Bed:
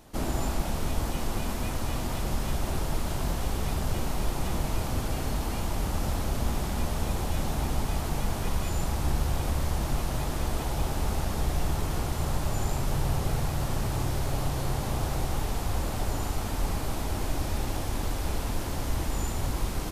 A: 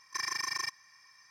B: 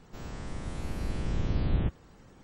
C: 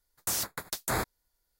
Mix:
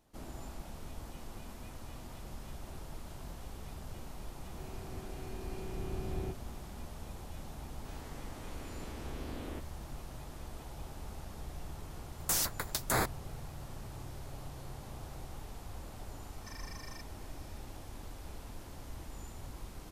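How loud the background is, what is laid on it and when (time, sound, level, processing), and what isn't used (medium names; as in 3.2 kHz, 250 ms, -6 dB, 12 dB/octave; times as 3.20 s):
bed -16.5 dB
4.43 s: add B -12 dB + small resonant body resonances 380/720/2400 Hz, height 17 dB, ringing for 95 ms
7.71 s: add B -7 dB + steep high-pass 220 Hz 72 dB/octave
12.02 s: add C -0.5 dB
16.32 s: add A -9 dB + compression 2:1, threshold -43 dBFS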